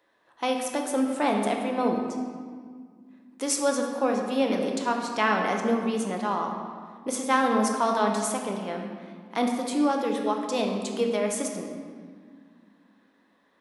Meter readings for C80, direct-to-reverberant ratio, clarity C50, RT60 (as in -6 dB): 5.0 dB, 1.5 dB, 3.5 dB, 1.9 s